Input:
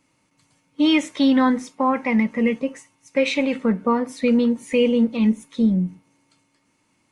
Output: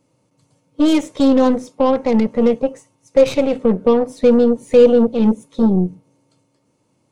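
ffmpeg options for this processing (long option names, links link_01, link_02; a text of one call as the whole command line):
ffmpeg -i in.wav -af "aeval=exprs='0.447*(cos(1*acos(clip(val(0)/0.447,-1,1)))-cos(1*PI/2))+0.0501*(cos(8*acos(clip(val(0)/0.447,-1,1)))-cos(8*PI/2))':channel_layout=same,equalizer=frequency=125:width_type=o:width=1:gain=10,equalizer=frequency=500:width_type=o:width=1:gain=11,equalizer=frequency=2000:width_type=o:width=1:gain=-8,volume=-1.5dB" out.wav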